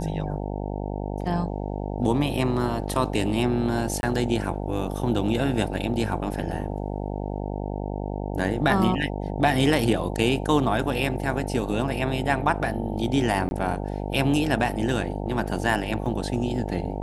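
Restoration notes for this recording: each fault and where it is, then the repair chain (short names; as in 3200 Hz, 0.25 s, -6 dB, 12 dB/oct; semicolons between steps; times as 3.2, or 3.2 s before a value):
buzz 50 Hz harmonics 18 -30 dBFS
4.01–4.03 gap 21 ms
13.49–13.51 gap 21 ms
16.06 gap 2.4 ms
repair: de-hum 50 Hz, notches 18; interpolate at 4.01, 21 ms; interpolate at 13.49, 21 ms; interpolate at 16.06, 2.4 ms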